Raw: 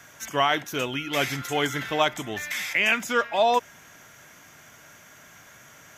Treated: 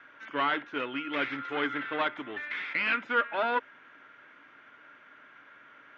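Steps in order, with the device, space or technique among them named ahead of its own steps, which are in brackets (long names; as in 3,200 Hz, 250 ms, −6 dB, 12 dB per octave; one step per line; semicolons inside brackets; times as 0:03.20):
guitar amplifier (tube saturation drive 20 dB, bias 0.7; bass and treble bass −13 dB, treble −11 dB; loudspeaker in its box 100–3,500 Hz, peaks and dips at 160 Hz −4 dB, 280 Hz +8 dB, 710 Hz −8 dB, 1,400 Hz +6 dB)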